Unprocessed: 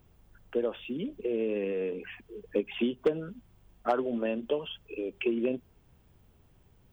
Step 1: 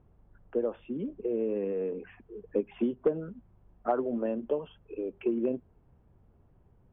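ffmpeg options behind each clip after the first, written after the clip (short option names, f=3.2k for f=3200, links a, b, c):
-af "lowpass=1.2k"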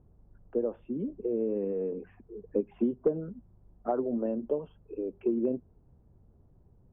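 -af "tiltshelf=f=1.3k:g=9,volume=-7dB"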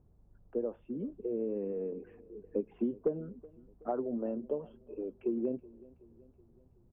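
-af "aecho=1:1:375|750|1125|1500:0.0794|0.0421|0.0223|0.0118,volume=-4.5dB"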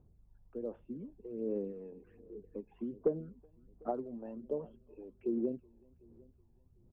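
-af "aphaser=in_gain=1:out_gain=1:delay=1.2:decay=0.6:speed=1.3:type=sinusoidal,volume=-7.5dB"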